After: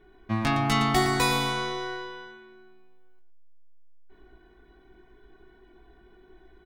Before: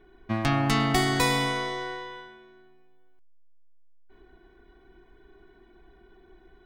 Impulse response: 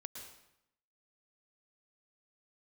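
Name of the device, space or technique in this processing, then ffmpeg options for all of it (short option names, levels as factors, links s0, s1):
slapback doubling: -filter_complex "[0:a]asplit=3[s0][s1][s2];[s1]adelay=19,volume=0.631[s3];[s2]adelay=114,volume=0.355[s4];[s0][s3][s4]amix=inputs=3:normalize=0,volume=0.841"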